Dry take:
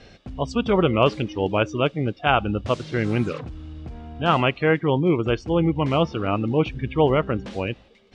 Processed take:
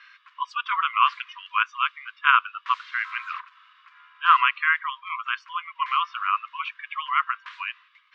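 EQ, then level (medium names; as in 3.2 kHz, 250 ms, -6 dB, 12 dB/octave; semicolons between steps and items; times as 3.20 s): brick-wall FIR high-pass 970 Hz; low-pass 2 kHz 12 dB/octave; +7.5 dB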